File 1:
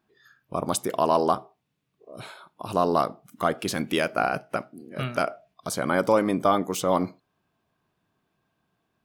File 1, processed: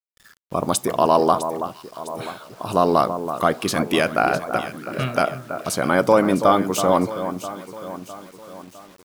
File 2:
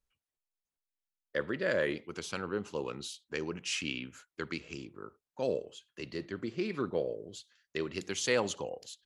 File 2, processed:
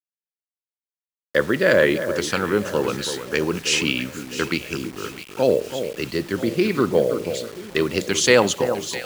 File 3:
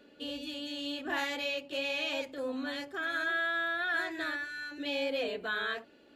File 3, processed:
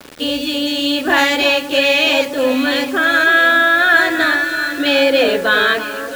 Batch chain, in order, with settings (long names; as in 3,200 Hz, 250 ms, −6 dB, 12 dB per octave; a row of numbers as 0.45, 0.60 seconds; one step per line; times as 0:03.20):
delay that swaps between a low-pass and a high-pass 328 ms, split 1,500 Hz, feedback 69%, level −9.5 dB
bit reduction 9 bits
normalise the peak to −1.5 dBFS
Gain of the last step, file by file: +5.0, +14.0, +20.0 decibels